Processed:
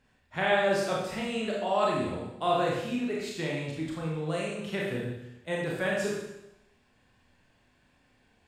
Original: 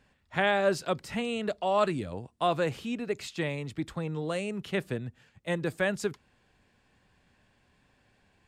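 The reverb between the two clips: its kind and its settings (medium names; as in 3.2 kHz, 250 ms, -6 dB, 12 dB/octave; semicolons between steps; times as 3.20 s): Schroeder reverb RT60 0.87 s, combs from 25 ms, DRR -4 dB; trim -4.5 dB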